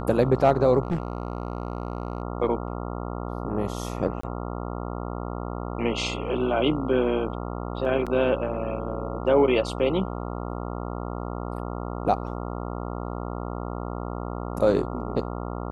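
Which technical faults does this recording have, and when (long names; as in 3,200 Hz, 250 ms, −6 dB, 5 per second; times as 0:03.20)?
mains buzz 60 Hz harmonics 23 −32 dBFS
0:00.83–0:02.22: clipping −21.5 dBFS
0:04.21–0:04.23: drop-out 24 ms
0:08.06–0:08.07: drop-out 6.5 ms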